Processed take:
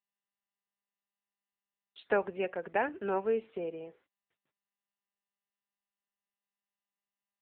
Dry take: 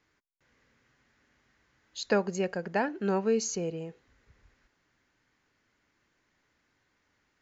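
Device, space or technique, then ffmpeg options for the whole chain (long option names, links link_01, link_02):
telephone: -filter_complex "[0:a]agate=range=-38dB:threshold=-56dB:ratio=16:detection=peak,asplit=3[link_01][link_02][link_03];[link_01]afade=type=out:start_time=2.14:duration=0.02[link_04];[link_02]equalizer=frequency=2600:width_type=o:width=0.28:gain=5.5,afade=type=in:start_time=2.14:duration=0.02,afade=type=out:start_time=3.23:duration=0.02[link_05];[link_03]afade=type=in:start_time=3.23:duration=0.02[link_06];[link_04][link_05][link_06]amix=inputs=3:normalize=0,highpass=360,lowpass=3500" -ar 8000 -c:a libopencore_amrnb -b:a 6700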